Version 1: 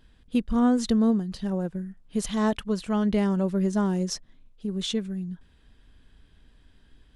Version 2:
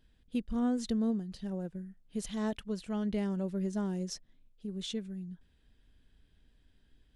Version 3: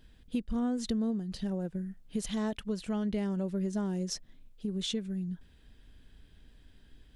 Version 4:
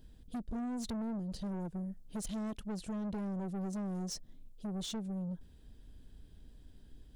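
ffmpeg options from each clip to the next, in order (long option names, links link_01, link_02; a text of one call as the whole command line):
ffmpeg -i in.wav -af "equalizer=frequency=1100:width=1.8:gain=-5.5,volume=-9dB" out.wav
ffmpeg -i in.wav -af "acompressor=threshold=-41dB:ratio=2.5,volume=8.5dB" out.wav
ffmpeg -i in.wav -af "equalizer=frequency=2100:width_type=o:width=2:gain=-11.5,asoftclip=type=tanh:threshold=-37.5dB,volume=2dB" out.wav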